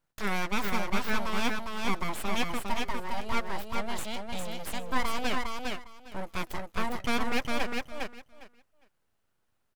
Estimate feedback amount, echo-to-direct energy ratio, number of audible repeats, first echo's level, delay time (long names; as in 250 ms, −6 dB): 17%, −3.5 dB, 3, −3.5 dB, 406 ms